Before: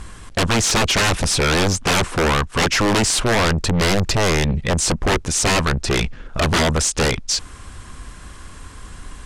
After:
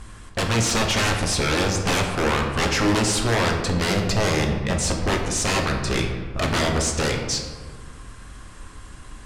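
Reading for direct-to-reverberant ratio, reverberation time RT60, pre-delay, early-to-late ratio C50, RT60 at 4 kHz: 1.5 dB, 1.5 s, 6 ms, 5.0 dB, 0.80 s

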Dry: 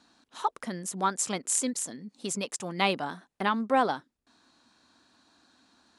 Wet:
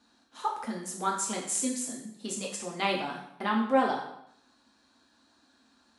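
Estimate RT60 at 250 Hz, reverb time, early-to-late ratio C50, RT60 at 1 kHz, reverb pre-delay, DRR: 0.75 s, 0.75 s, 5.0 dB, 0.70 s, 3 ms, -2.5 dB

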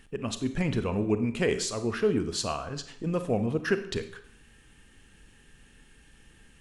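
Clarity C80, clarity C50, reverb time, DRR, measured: 15.0 dB, 11.5 dB, 0.65 s, 9.5 dB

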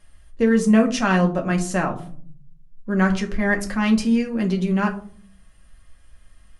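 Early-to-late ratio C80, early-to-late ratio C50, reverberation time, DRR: 17.0 dB, 12.5 dB, 0.50 s, 1.5 dB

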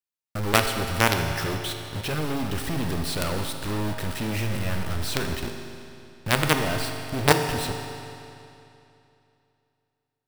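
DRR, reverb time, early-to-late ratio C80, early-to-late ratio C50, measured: 4.5 dB, 2.8 s, 6.5 dB, 6.0 dB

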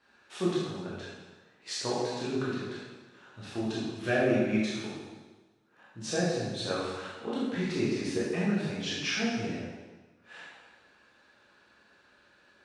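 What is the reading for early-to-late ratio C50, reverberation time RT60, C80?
-1.5 dB, 1.3 s, 1.0 dB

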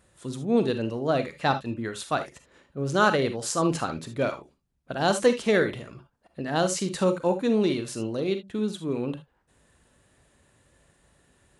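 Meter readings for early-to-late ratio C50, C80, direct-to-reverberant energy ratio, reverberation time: 11.0 dB, 24.0 dB, 8.5 dB, no single decay rate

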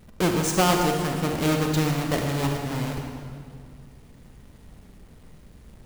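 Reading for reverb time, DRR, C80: 2.1 s, 2.0 dB, 4.0 dB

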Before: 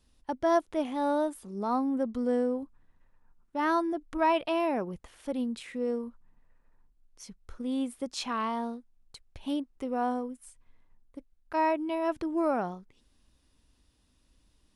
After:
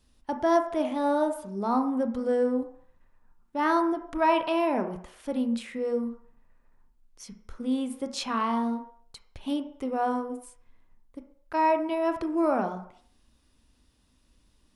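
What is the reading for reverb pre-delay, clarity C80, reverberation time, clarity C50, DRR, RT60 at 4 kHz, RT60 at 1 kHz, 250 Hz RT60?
24 ms, 13.5 dB, 0.60 s, 10.0 dB, 6.5 dB, 0.60 s, 0.65 s, 0.45 s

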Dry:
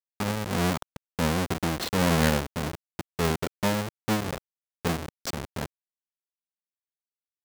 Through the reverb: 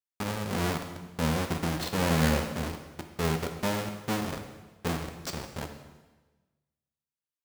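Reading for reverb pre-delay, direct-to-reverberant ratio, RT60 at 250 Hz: 10 ms, 5.0 dB, 1.3 s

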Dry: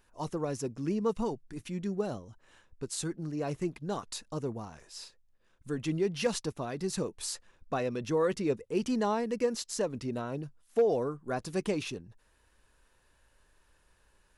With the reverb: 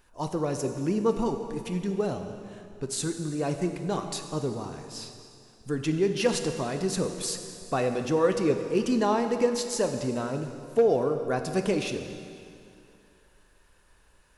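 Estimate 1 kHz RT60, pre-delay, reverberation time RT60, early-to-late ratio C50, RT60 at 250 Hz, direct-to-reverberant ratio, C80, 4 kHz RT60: 2.5 s, 8 ms, 2.5 s, 7.0 dB, 2.5 s, 6.0 dB, 8.0 dB, 2.3 s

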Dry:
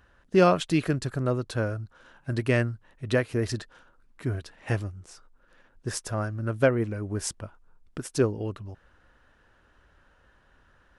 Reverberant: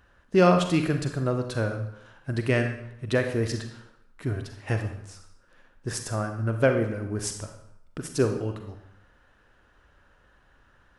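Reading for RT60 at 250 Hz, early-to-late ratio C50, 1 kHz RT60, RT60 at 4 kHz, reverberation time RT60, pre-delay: 0.70 s, 7.0 dB, 0.75 s, 0.65 s, 0.75 s, 35 ms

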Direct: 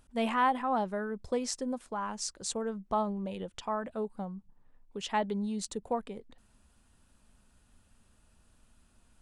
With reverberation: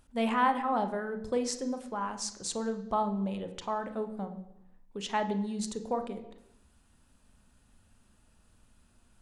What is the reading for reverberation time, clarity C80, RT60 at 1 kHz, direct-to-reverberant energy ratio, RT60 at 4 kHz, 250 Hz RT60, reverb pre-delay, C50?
0.85 s, 14.0 dB, 0.85 s, 7.5 dB, 0.85 s, 0.90 s, 28 ms, 11.0 dB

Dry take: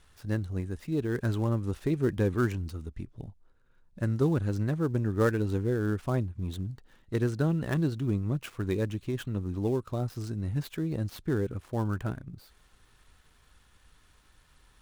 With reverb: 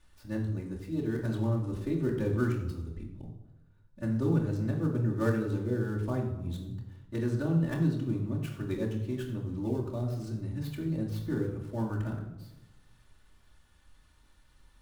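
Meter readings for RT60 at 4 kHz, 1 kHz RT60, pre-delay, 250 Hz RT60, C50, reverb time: 0.65 s, 0.90 s, 3 ms, 1.2 s, 6.5 dB, 1.0 s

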